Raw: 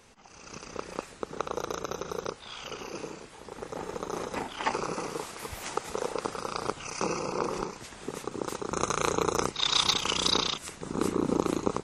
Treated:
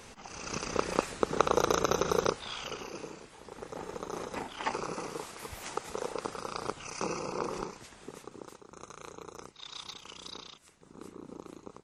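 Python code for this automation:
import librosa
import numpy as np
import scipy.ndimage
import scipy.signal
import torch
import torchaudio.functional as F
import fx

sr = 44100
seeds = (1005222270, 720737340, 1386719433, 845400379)

y = fx.gain(x, sr, db=fx.line((2.23, 7.0), (2.97, -4.0), (7.67, -4.0), (8.4, -12.0), (8.68, -19.0)))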